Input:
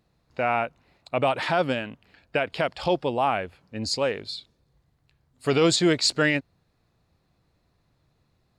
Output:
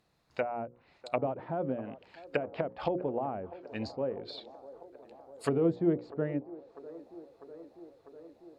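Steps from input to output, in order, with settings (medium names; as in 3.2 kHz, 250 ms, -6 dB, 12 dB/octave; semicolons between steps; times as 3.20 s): bass shelf 420 Hz -5 dB; hum notches 60/120/180/240/300/360/420/480/540 Hz; low-pass that closes with the level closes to 420 Hz, closed at -24.5 dBFS; bass shelf 96 Hz -5.5 dB; feedback echo behind a band-pass 648 ms, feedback 74%, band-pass 620 Hz, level -16.5 dB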